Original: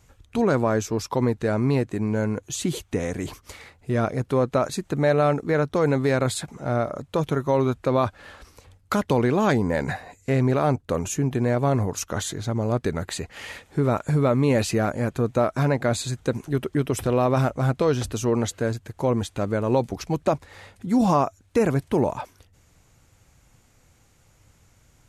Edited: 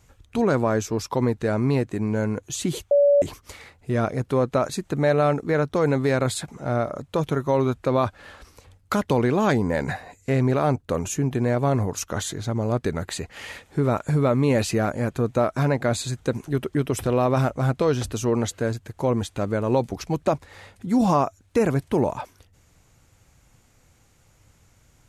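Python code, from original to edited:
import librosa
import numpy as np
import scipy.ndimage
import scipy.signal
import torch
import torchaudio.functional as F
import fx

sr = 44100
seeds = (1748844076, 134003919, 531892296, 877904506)

y = fx.edit(x, sr, fx.bleep(start_s=2.91, length_s=0.31, hz=572.0, db=-13.0), tone=tone)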